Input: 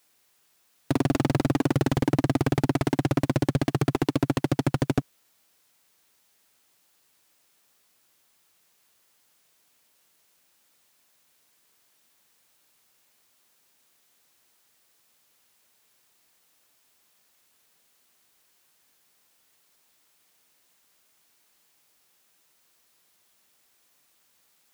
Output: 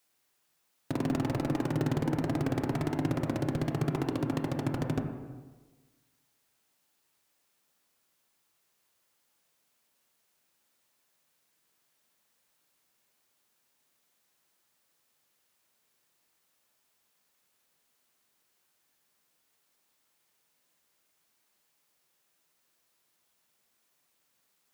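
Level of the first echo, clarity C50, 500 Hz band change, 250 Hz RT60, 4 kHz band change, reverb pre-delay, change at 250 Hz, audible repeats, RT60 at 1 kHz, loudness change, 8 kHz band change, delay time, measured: none, 6.0 dB, -6.0 dB, 1.4 s, -8.5 dB, 18 ms, -6.0 dB, none, 1.3 s, -6.0 dB, -8.5 dB, none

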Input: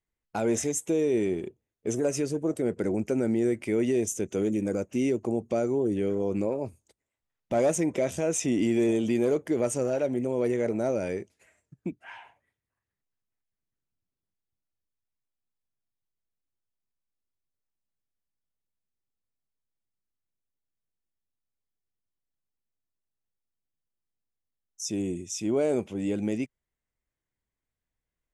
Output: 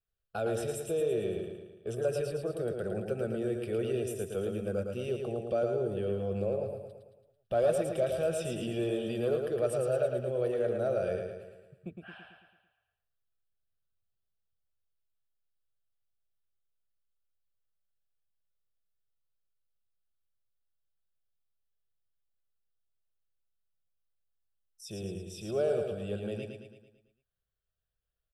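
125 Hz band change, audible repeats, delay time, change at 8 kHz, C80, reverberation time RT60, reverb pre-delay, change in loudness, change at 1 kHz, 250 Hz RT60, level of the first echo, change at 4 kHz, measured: -2.0 dB, 6, 0.111 s, -13.0 dB, none, none, none, -5.0 dB, -3.5 dB, none, -5.0 dB, -3.5 dB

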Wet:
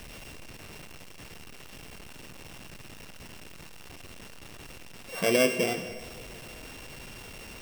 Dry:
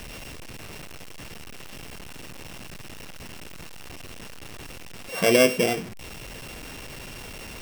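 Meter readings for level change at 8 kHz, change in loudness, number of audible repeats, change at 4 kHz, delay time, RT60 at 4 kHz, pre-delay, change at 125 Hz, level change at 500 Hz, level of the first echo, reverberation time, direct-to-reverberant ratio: -5.0 dB, -5.0 dB, none, -5.0 dB, none, 2.3 s, 12 ms, -5.5 dB, -5.5 dB, none, 2.5 s, 10.5 dB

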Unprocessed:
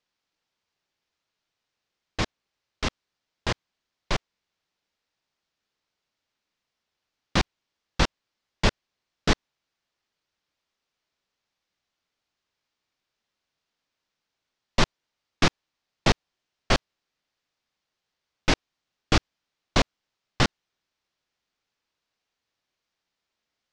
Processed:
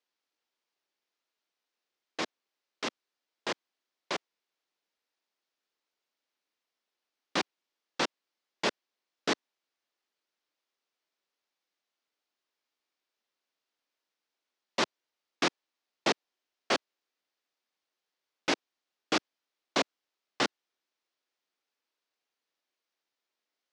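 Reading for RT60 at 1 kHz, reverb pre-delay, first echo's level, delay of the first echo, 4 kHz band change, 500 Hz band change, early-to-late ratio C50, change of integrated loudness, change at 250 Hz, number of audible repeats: none, none, none, none, -5.0 dB, -4.0 dB, none, -6.0 dB, -7.5 dB, none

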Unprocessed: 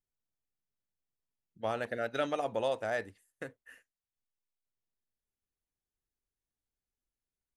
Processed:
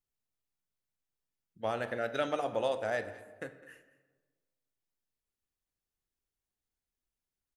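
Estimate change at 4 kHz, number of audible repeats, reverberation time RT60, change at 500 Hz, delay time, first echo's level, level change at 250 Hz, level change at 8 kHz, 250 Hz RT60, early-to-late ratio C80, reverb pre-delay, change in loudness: +0.5 dB, 1, 1.3 s, +0.5 dB, 0.208 s, -19.5 dB, 0.0 dB, 0.0 dB, 1.5 s, 13.0 dB, 14 ms, 0.0 dB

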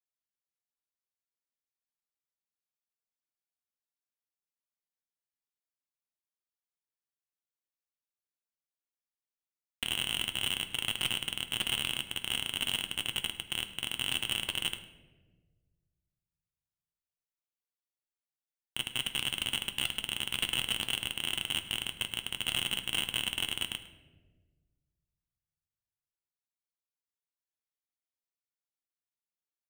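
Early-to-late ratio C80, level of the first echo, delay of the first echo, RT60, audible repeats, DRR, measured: 12.5 dB, -18.0 dB, 0.105 s, 1.4 s, 1, 7.0 dB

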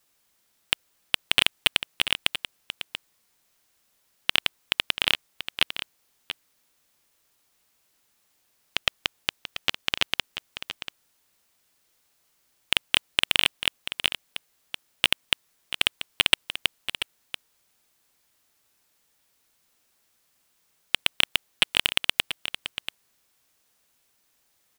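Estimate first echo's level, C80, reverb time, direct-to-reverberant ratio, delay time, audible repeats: -11.0 dB, none, none, none, 0.686 s, 1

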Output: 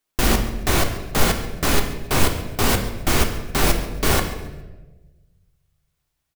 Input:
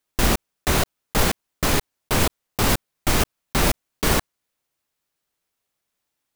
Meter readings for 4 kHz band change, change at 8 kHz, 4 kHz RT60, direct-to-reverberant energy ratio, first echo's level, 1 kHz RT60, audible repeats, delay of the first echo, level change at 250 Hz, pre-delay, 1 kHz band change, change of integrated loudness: +1.5 dB, +1.0 dB, 0.85 s, 4.0 dB, -17.5 dB, 1.0 s, 2, 0.138 s, +2.0 dB, 3 ms, +1.5 dB, +1.5 dB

